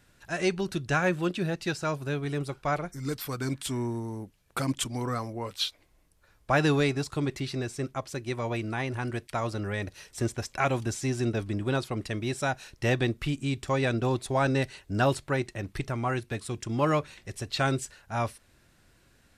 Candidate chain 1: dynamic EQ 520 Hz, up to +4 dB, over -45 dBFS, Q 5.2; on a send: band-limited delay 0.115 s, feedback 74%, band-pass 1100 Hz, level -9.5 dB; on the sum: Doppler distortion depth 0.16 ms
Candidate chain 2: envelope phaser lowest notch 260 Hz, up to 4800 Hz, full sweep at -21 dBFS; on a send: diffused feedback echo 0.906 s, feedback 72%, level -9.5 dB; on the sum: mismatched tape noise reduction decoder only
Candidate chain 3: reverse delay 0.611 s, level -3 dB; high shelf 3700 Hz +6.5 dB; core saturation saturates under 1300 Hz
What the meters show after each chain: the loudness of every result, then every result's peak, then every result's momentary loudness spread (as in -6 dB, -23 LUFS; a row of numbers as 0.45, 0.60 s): -29.5, -30.5, -31.0 LUFS; -11.0, -12.0, -11.5 dBFS; 9, 10, 6 LU